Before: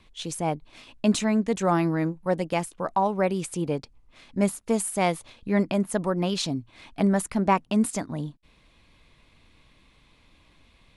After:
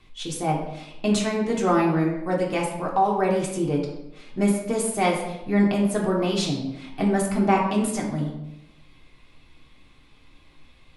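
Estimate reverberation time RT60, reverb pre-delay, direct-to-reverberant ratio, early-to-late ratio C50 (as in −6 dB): 0.90 s, 3 ms, −3.0 dB, 5.0 dB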